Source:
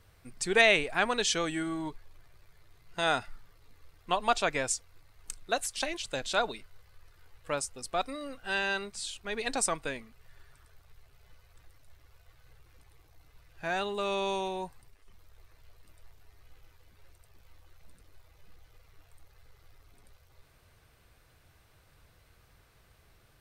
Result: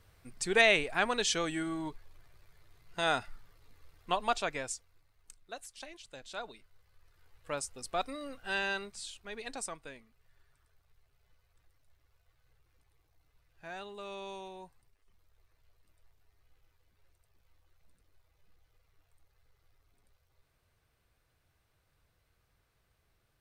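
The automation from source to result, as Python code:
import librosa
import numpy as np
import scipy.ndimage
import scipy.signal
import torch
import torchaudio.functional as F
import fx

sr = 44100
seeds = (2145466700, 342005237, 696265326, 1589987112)

y = fx.gain(x, sr, db=fx.line((4.11, -2.0), (5.39, -14.5), (6.18, -14.5), (7.78, -2.5), (8.64, -2.5), (9.8, -12.0)))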